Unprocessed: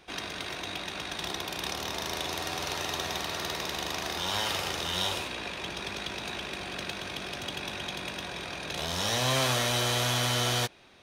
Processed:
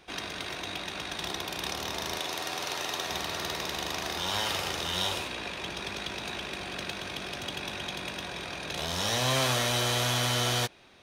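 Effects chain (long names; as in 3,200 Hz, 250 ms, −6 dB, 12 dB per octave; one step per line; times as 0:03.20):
0:02.18–0:03.10: high-pass filter 270 Hz 6 dB per octave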